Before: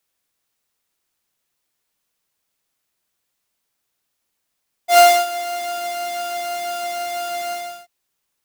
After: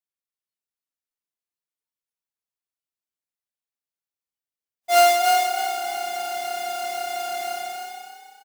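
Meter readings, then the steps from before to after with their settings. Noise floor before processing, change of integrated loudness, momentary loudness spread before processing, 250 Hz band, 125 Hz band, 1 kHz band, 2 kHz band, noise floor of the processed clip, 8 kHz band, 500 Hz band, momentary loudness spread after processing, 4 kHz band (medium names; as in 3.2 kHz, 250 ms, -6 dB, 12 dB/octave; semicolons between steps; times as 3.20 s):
-76 dBFS, -3.0 dB, 15 LU, -4.0 dB, no reading, -2.0 dB, -2.5 dB, under -85 dBFS, -3.0 dB, -4.0 dB, 16 LU, -2.5 dB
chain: spectral noise reduction 18 dB; frequency-shifting echo 304 ms, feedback 35%, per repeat +32 Hz, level -4 dB; trim -4.5 dB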